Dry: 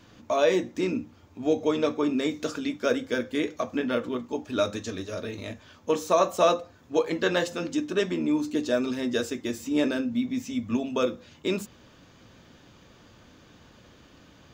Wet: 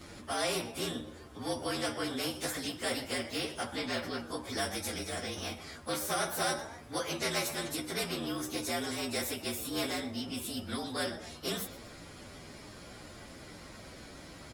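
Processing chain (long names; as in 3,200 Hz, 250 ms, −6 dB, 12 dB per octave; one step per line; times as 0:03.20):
partials spread apart or drawn together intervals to 114%
echo with shifted repeats 122 ms, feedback 32%, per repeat +74 Hz, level −23.5 dB
every bin compressed towards the loudest bin 2 to 1
level −8 dB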